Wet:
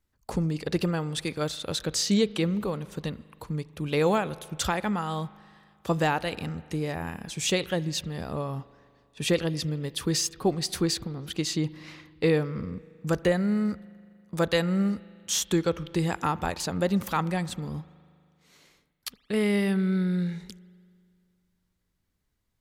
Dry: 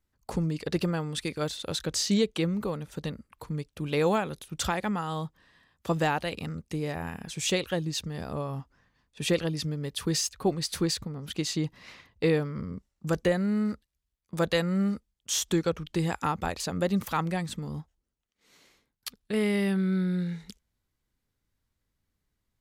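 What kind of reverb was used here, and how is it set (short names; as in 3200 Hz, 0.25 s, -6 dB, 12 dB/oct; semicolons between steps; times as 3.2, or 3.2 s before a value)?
spring tank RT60 2.2 s, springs 39 ms, chirp 45 ms, DRR 18.5 dB; gain +1.5 dB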